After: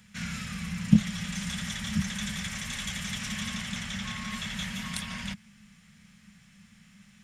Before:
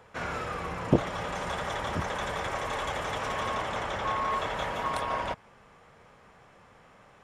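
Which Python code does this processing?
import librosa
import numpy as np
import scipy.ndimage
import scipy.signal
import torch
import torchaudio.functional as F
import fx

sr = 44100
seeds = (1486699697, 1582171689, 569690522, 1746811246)

y = fx.curve_eq(x, sr, hz=(130.0, 210.0, 320.0, 1000.0, 1900.0, 6200.0), db=(0, 14, -25, -18, 0, 9))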